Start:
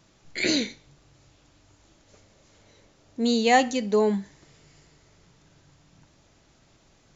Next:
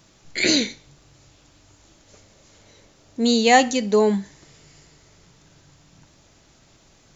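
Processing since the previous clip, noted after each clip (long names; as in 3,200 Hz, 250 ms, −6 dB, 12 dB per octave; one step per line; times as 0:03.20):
high-shelf EQ 4,700 Hz +5.5 dB
level +4 dB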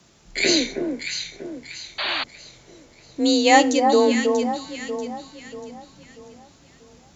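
frequency shifter +31 Hz
delay that swaps between a low-pass and a high-pass 319 ms, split 1,300 Hz, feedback 63%, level −4 dB
sound drawn into the spectrogram noise, 0:01.98–0:02.24, 540–4,700 Hz −25 dBFS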